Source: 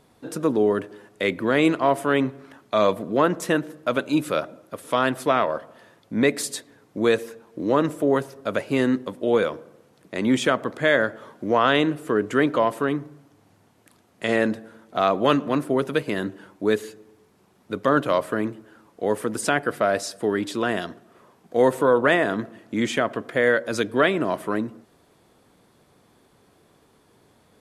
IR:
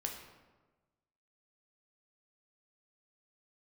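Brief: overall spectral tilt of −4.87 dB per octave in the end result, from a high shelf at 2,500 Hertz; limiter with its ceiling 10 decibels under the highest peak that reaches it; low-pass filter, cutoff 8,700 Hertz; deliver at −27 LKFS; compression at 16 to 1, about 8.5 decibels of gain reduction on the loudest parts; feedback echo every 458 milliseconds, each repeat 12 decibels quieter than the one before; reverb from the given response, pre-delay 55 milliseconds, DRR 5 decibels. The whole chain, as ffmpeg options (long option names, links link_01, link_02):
-filter_complex "[0:a]lowpass=8700,highshelf=frequency=2500:gain=-4.5,acompressor=threshold=-22dB:ratio=16,alimiter=limit=-20.5dB:level=0:latency=1,aecho=1:1:458|916|1374:0.251|0.0628|0.0157,asplit=2[link_01][link_02];[1:a]atrim=start_sample=2205,adelay=55[link_03];[link_02][link_03]afir=irnorm=-1:irlink=0,volume=-5.5dB[link_04];[link_01][link_04]amix=inputs=2:normalize=0,volume=4.5dB"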